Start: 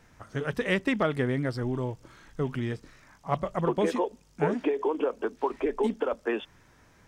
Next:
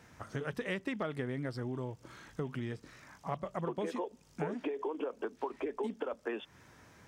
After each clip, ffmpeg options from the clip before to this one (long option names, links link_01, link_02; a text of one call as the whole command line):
ffmpeg -i in.wav -af "highpass=72,acompressor=threshold=-38dB:ratio=3,volume=1dB" out.wav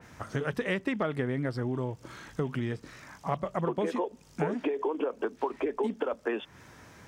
ffmpeg -i in.wav -af "adynamicequalizer=threshold=0.002:dfrequency=3000:dqfactor=0.7:tfrequency=3000:tqfactor=0.7:attack=5:release=100:ratio=0.375:range=2.5:mode=cutabove:tftype=highshelf,volume=6.5dB" out.wav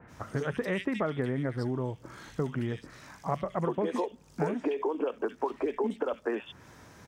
ffmpeg -i in.wav -filter_complex "[0:a]acrossover=split=2200[link_01][link_02];[link_02]adelay=70[link_03];[link_01][link_03]amix=inputs=2:normalize=0" out.wav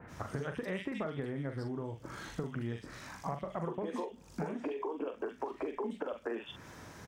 ffmpeg -i in.wav -filter_complex "[0:a]acompressor=threshold=-37dB:ratio=5,asplit=2[link_01][link_02];[link_02]adelay=43,volume=-8dB[link_03];[link_01][link_03]amix=inputs=2:normalize=0,volume=1.5dB" out.wav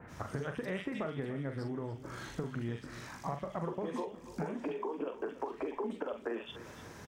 ffmpeg -i in.wav -af "aecho=1:1:295|590|885|1180|1475:0.178|0.0889|0.0445|0.0222|0.0111" out.wav